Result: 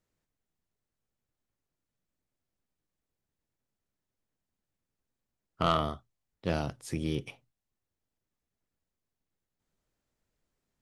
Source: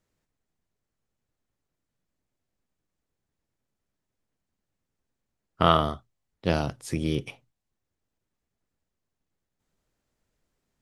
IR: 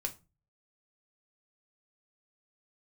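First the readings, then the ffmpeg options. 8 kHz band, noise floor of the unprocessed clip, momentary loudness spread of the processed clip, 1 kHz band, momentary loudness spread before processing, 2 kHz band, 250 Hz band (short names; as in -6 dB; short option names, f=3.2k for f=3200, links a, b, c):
-4.5 dB, -84 dBFS, 12 LU, -6.5 dB, 13 LU, -6.0 dB, -5.5 dB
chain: -af "asoftclip=type=tanh:threshold=-11dB,volume=-4.5dB"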